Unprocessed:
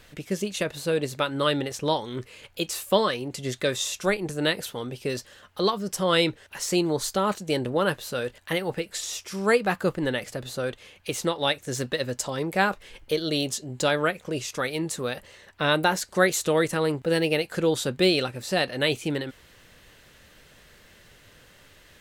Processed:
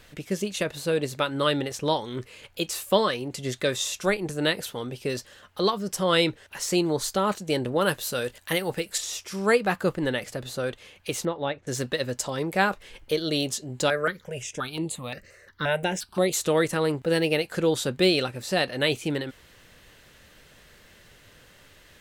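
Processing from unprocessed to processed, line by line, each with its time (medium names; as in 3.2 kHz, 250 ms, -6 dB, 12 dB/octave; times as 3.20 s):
7.81–8.98 s: treble shelf 5.1 kHz +9.5 dB
11.25–11.67 s: tape spacing loss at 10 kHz 37 dB
13.90–16.33 s: stepped phaser 5.7 Hz 900–5600 Hz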